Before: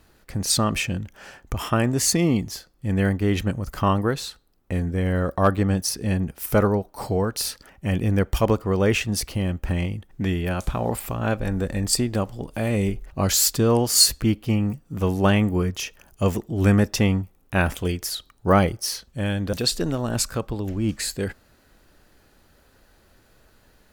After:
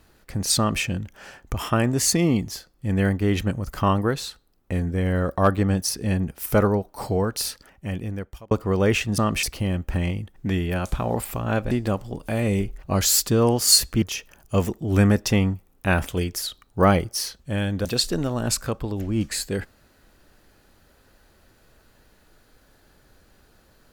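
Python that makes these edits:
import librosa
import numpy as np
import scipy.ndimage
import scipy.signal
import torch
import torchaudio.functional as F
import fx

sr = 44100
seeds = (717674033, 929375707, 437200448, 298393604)

y = fx.edit(x, sr, fx.duplicate(start_s=0.58, length_s=0.25, to_s=9.18),
    fx.fade_out_span(start_s=7.37, length_s=1.14),
    fx.cut(start_s=11.46, length_s=0.53),
    fx.cut(start_s=14.3, length_s=1.4), tone=tone)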